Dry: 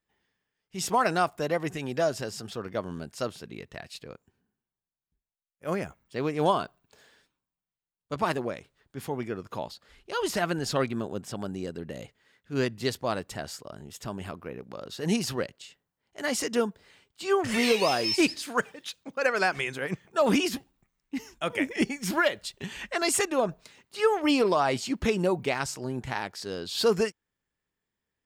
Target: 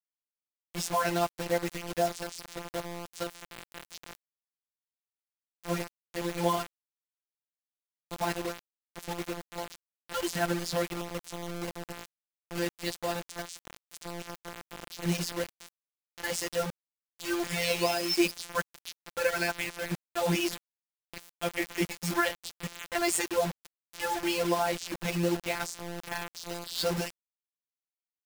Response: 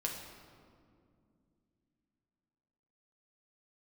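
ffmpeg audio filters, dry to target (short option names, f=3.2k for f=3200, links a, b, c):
-af "bandreject=f=1.2k:w=7.8,afftfilt=real='hypot(re,im)*cos(PI*b)':imag='0':win_size=1024:overlap=0.75,acrusher=bits=5:mix=0:aa=0.000001"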